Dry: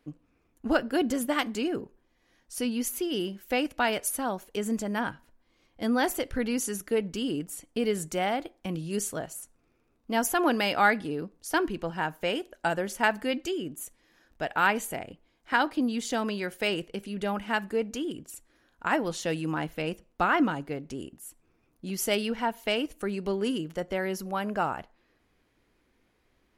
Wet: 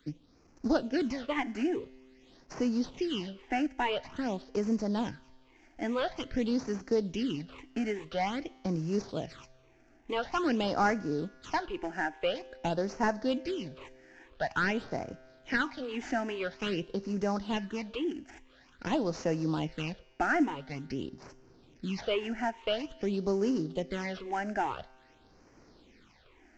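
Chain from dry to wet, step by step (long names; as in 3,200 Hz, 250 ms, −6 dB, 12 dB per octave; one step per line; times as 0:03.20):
variable-slope delta modulation 32 kbit/s
all-pass phaser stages 8, 0.48 Hz, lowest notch 140–3,500 Hz
tuned comb filter 130 Hz, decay 1.6 s, mix 40%
multiband upward and downward compressor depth 40%
level +4 dB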